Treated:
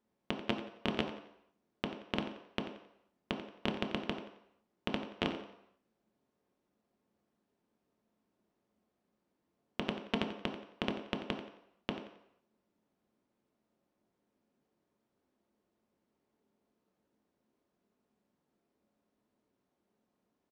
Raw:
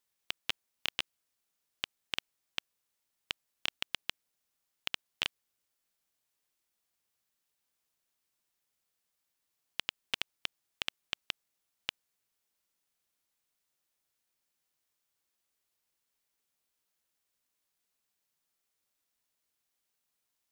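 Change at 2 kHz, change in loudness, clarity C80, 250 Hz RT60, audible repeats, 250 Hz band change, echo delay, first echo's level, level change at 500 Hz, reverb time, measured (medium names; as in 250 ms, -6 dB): -2.0 dB, 0.0 dB, 9.0 dB, 0.60 s, 2, +21.5 dB, 89 ms, -13.0 dB, +15.5 dB, 0.75 s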